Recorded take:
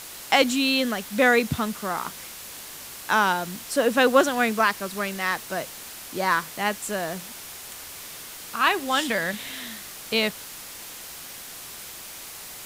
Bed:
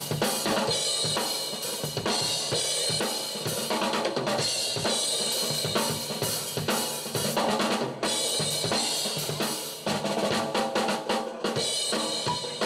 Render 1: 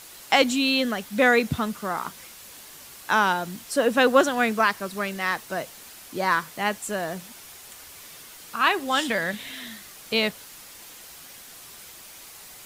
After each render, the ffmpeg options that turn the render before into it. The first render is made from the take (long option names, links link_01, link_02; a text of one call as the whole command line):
ffmpeg -i in.wav -af "afftdn=noise_reduction=6:noise_floor=-40" out.wav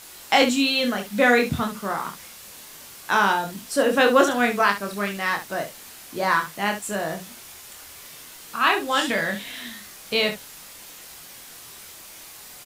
ffmpeg -i in.wav -af "aecho=1:1:25|69:0.631|0.316" out.wav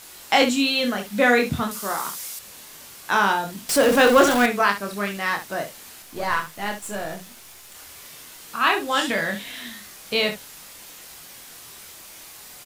ffmpeg -i in.wav -filter_complex "[0:a]asettb=1/sr,asplit=3[link_01][link_02][link_03];[link_01]atrim=end=1.714[link_04];[link_02]atrim=start=1.71:end=2.39,asetpts=PTS-STARTPTS,afade=type=in:duration=0.004:curve=qsin,afade=type=out:start_time=0.676:duration=0.004:curve=qsin,bass=frequency=250:gain=-7,treble=frequency=4000:gain=11[link_05];[link_03]atrim=start=2.386[link_06];[link_04][link_05]acrossfade=duration=0.004:curve1=hsin:curve2=qsin[link_07];[link_07][link_06]acrossfade=duration=0.004:curve1=qsin:curve2=hsin,asettb=1/sr,asplit=3[link_08][link_09][link_10];[link_08]atrim=end=3.694[link_11];[link_09]atrim=start=3.69:end=4.46,asetpts=PTS-STARTPTS,afade=type=in:duration=0.004:curve=qsin,afade=type=out:start_time=0.766:duration=0.004:curve=qsin,aeval=exprs='val(0)+0.5*0.1*sgn(val(0))':channel_layout=same[link_12];[link_10]atrim=start=4.456[link_13];[link_11][link_12]acrossfade=duration=0.004:curve1=hsin:curve2=qsin[link_14];[link_14][link_13]acrossfade=duration=0.004:curve1=qsin:curve2=hsin,asettb=1/sr,asplit=3[link_15][link_16][link_17];[link_15]atrim=end=6.024[link_18];[link_16]atrim=start=6.02:end=7.75,asetpts=PTS-STARTPTS,afade=type=in:duration=0.004:curve=qsin,afade=type=out:start_time=1.726:duration=0.004:curve=qsin,aeval=exprs='if(lt(val(0),0),0.447*val(0),val(0))':channel_layout=same[link_19];[link_17]atrim=start=7.746[link_20];[link_18][link_19]acrossfade=duration=0.004:curve1=hsin:curve2=qsin[link_21];[link_21][link_20]acrossfade=duration=0.004:curve1=qsin:curve2=hsin" out.wav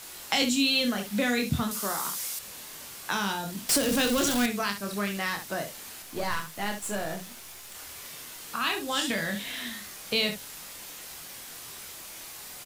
ffmpeg -i in.wav -filter_complex "[0:a]acrossover=split=240|3000[link_01][link_02][link_03];[link_02]acompressor=threshold=-30dB:ratio=6[link_04];[link_01][link_04][link_03]amix=inputs=3:normalize=0" out.wav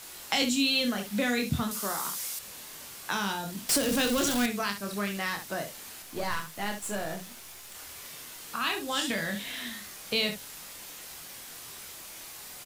ffmpeg -i in.wav -af "volume=-1.5dB" out.wav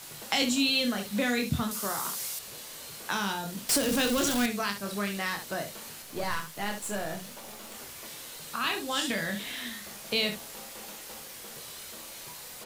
ffmpeg -i in.wav -i bed.wav -filter_complex "[1:a]volume=-22.5dB[link_01];[0:a][link_01]amix=inputs=2:normalize=0" out.wav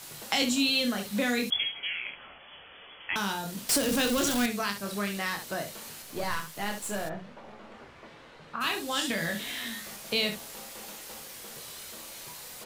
ffmpeg -i in.wav -filter_complex "[0:a]asettb=1/sr,asplit=3[link_01][link_02][link_03];[link_01]atrim=end=1.504[link_04];[link_02]atrim=start=1.5:end=3.16,asetpts=PTS-STARTPTS,afade=type=in:duration=0.004:curve=qsin,afade=type=out:start_time=1.656:duration=0.004:curve=qsin,lowpass=frequency=3000:width_type=q:width=0.5098,lowpass=frequency=3000:width_type=q:width=0.6013,lowpass=frequency=3000:width_type=q:width=0.9,lowpass=frequency=3000:width_type=q:width=2.563,afreqshift=-3500[link_05];[link_03]atrim=start=3.156[link_06];[link_04][link_05]acrossfade=duration=0.004:curve1=hsin:curve2=qsin[link_07];[link_07][link_06]acrossfade=duration=0.004:curve1=qsin:curve2=hsin,asplit=3[link_08][link_09][link_10];[link_08]afade=type=out:start_time=7.08:duration=0.02[link_11];[link_09]lowpass=1900,afade=type=in:start_time=7.08:duration=0.02,afade=type=out:start_time=8.6:duration=0.02[link_12];[link_10]afade=type=in:start_time=8.6:duration=0.02[link_13];[link_11][link_12][link_13]amix=inputs=3:normalize=0,asettb=1/sr,asplit=3[link_14][link_15][link_16];[link_14]atrim=end=9.194[link_17];[link_15]atrim=start=9.19:end=9.96,asetpts=PTS-STARTPTS,afade=type=in:duration=0.004:curve=qsin,afade=type=out:start_time=0.766:duration=0.004:curve=qsin,asplit=2[link_18][link_19];[link_19]adelay=18,volume=-5dB[link_20];[link_18][link_20]amix=inputs=2:normalize=0,atrim=end_sample=33957[link_21];[link_16]atrim=start=9.956[link_22];[link_17][link_21]acrossfade=duration=0.004:curve1=hsin:curve2=qsin[link_23];[link_23][link_22]acrossfade=duration=0.004:curve1=qsin:curve2=hsin" out.wav